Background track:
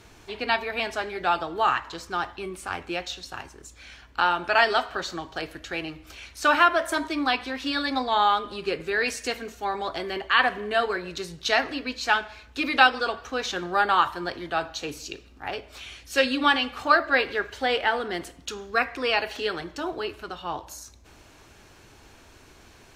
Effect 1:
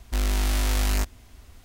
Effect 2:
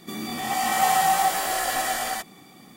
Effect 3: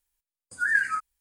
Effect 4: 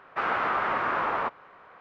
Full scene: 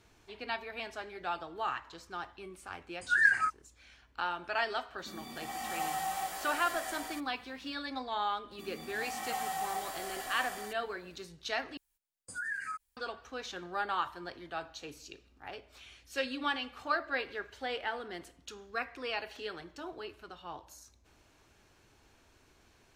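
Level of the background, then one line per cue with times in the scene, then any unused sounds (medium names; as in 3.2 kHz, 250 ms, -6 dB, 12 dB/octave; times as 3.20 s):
background track -12.5 dB
2.50 s: add 3 -1.5 dB + low-pass 7.9 kHz
4.98 s: add 2 -15 dB
8.51 s: add 2 -16 dB
11.77 s: replace with 3 -1 dB + compression 3:1, threshold -38 dBFS
not used: 1, 4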